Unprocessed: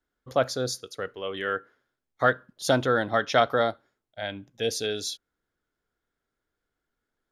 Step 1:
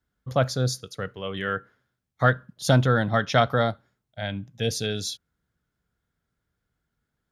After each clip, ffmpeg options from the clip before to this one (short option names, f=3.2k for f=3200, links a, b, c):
-af "highpass=45,lowshelf=f=230:t=q:w=1.5:g=9.5,volume=1dB"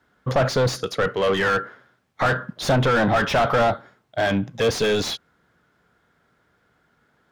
-filter_complex "[0:a]asoftclip=type=tanh:threshold=-14.5dB,acompressor=threshold=-21dB:ratio=6,asplit=2[a][b];[b]highpass=f=720:p=1,volume=34dB,asoftclip=type=tanh:threshold=-6dB[c];[a][c]amix=inputs=2:normalize=0,lowpass=f=1.1k:p=1,volume=-6dB,volume=-2.5dB"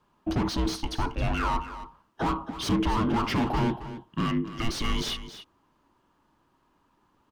-af "alimiter=limit=-16.5dB:level=0:latency=1:release=171,afreqshift=-450,aecho=1:1:271:0.224,volume=-3.5dB"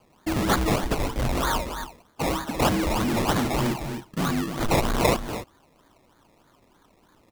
-af "asoftclip=type=tanh:threshold=-28.5dB,aexciter=amount=2:drive=9.2:freq=3.7k,acrusher=samples=23:mix=1:aa=0.000001:lfo=1:lforange=13.8:lforate=3.2,volume=7dB"